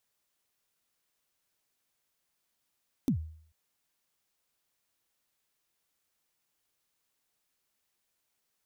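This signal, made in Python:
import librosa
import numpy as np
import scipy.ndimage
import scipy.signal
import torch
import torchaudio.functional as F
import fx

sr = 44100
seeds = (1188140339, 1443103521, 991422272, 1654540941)

y = fx.drum_kick(sr, seeds[0], length_s=0.44, level_db=-21.0, start_hz=300.0, end_hz=79.0, sweep_ms=95.0, decay_s=0.57, click=True)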